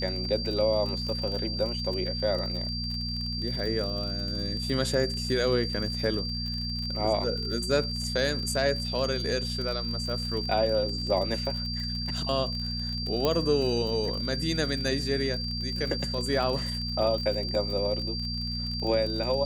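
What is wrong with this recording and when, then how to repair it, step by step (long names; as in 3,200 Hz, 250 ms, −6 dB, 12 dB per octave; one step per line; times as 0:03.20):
surface crackle 42 per second −33 dBFS
mains hum 60 Hz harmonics 4 −34 dBFS
whistle 4,700 Hz −33 dBFS
0:13.25: click −12 dBFS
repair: click removal
hum removal 60 Hz, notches 4
notch filter 4,700 Hz, Q 30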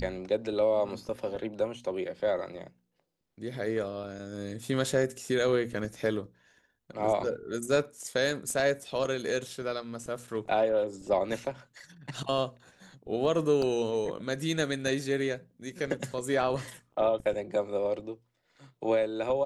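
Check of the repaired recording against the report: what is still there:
0:13.25: click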